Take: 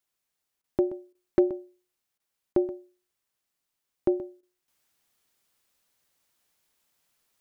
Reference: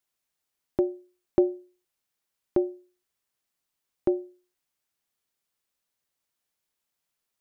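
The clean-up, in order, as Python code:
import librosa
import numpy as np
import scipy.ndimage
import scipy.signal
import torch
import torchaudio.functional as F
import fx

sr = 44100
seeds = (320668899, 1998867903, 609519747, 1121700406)

y = fx.fix_declip(x, sr, threshold_db=-11.5)
y = fx.fix_interpolate(y, sr, at_s=(0.62, 1.13, 2.18, 2.53, 4.41), length_ms=18.0)
y = fx.fix_echo_inverse(y, sr, delay_ms=127, level_db=-15.0)
y = fx.fix_level(y, sr, at_s=4.68, step_db=-9.0)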